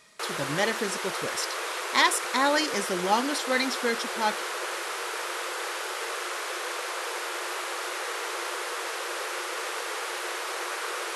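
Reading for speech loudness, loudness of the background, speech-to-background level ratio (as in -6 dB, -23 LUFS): -27.5 LUFS, -31.5 LUFS, 4.0 dB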